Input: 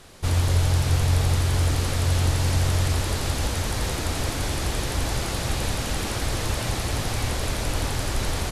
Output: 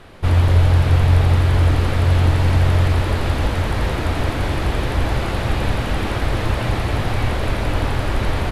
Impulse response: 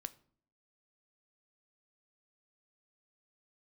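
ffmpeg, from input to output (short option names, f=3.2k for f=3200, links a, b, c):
-filter_complex "[0:a]asplit=2[a][b];[1:a]atrim=start_sample=2205,lowpass=3.2k[c];[b][c]afir=irnorm=-1:irlink=0,volume=14dB[d];[a][d]amix=inputs=2:normalize=0,volume=-6dB"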